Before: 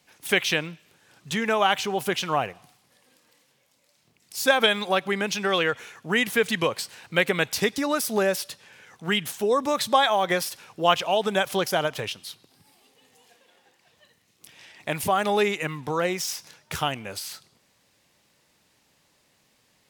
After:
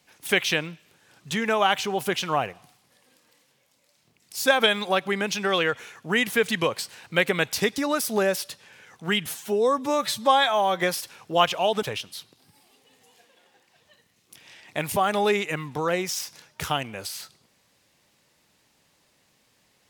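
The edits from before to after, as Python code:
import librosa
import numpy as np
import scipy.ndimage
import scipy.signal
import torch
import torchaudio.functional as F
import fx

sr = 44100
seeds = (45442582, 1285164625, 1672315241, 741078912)

y = fx.edit(x, sr, fx.stretch_span(start_s=9.26, length_s=1.03, factor=1.5),
    fx.cut(start_s=11.31, length_s=0.63), tone=tone)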